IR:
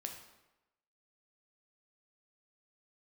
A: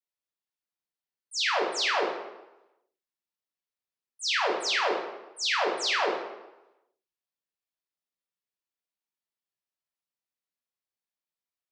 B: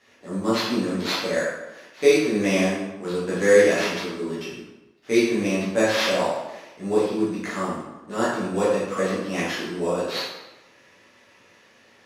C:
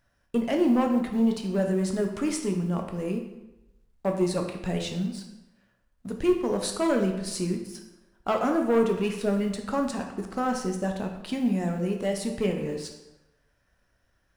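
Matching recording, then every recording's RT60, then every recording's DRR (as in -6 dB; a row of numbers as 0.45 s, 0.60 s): C; 1.0 s, 1.0 s, 1.0 s; -3.0 dB, -9.5 dB, 3.0 dB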